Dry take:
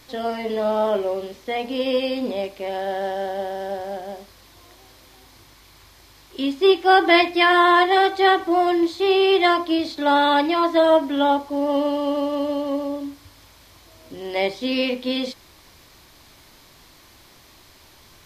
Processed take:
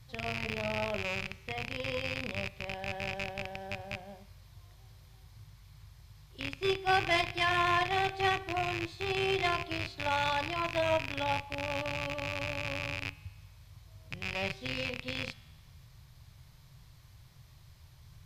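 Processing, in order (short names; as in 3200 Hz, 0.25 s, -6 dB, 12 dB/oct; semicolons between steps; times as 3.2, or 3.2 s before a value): rattling part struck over -38 dBFS, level -11 dBFS; resonant low shelf 190 Hz +13.5 dB, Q 3; resonator 77 Hz, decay 1.5 s, harmonics all, mix 50%; added harmonics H 6 -26 dB, 7 -28 dB, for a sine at -7.5 dBFS; gain -6 dB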